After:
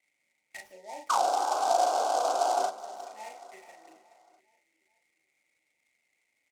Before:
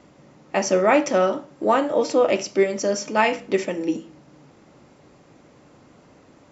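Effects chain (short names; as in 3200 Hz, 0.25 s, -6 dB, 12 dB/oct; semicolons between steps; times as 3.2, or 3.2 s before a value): Chebyshev band-stop 920–1900 Hz, order 5; painted sound noise, 1.09–2.67, 260–1600 Hz -13 dBFS; auto-wah 720–2200 Hz, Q 11, down, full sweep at -9 dBFS; doubler 37 ms -2.5 dB; on a send: feedback echo 0.425 s, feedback 48%, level -16 dB; on the sum: noise-modulated delay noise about 5200 Hz, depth 0.037 ms; gain -4.5 dB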